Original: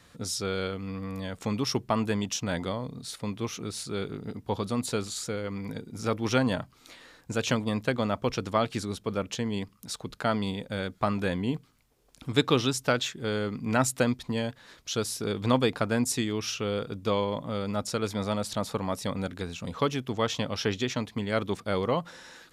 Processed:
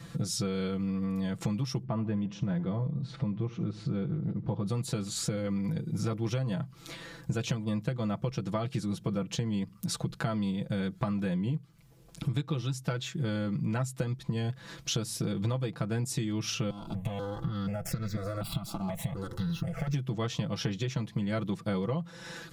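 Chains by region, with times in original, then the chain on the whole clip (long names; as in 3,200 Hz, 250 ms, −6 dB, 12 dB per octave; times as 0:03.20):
0:01.83–0:04.66: upward compression, threshold −35 dBFS + head-to-tape spacing loss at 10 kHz 33 dB + repeating echo 75 ms, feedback 45%, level −19.5 dB
0:16.70–0:19.94: lower of the sound and its delayed copy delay 1.5 ms + downward compressor 10 to 1, threshold −34 dBFS + step-sequenced phaser 4.1 Hz 490–3,000 Hz
whole clip: parametric band 130 Hz +14 dB 1.7 octaves; comb filter 6 ms, depth 84%; downward compressor 10 to 1, threshold −31 dBFS; level +2.5 dB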